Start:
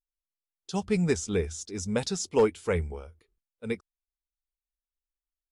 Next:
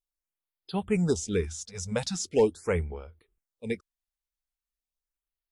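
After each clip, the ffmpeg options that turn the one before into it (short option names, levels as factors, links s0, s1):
-af "afftfilt=real='re*(1-between(b*sr/1024,290*pow(7400/290,0.5+0.5*sin(2*PI*0.41*pts/sr))/1.41,290*pow(7400/290,0.5+0.5*sin(2*PI*0.41*pts/sr))*1.41))':imag='im*(1-between(b*sr/1024,290*pow(7400/290,0.5+0.5*sin(2*PI*0.41*pts/sr))/1.41,290*pow(7400/290,0.5+0.5*sin(2*PI*0.41*pts/sr))*1.41))':win_size=1024:overlap=0.75"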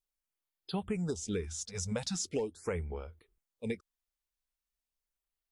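-af "acompressor=threshold=0.0282:ratio=10"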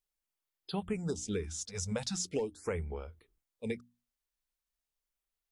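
-af "bandreject=f=60:t=h:w=6,bandreject=f=120:t=h:w=6,bandreject=f=180:t=h:w=6,bandreject=f=240:t=h:w=6,bandreject=f=300:t=h:w=6"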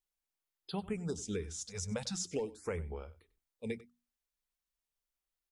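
-af "aecho=1:1:96:0.112,volume=0.75"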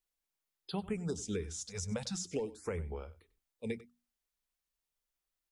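-filter_complex "[0:a]acrossover=split=410[s0][s1];[s1]acompressor=threshold=0.0126:ratio=6[s2];[s0][s2]amix=inputs=2:normalize=0,volume=1.12"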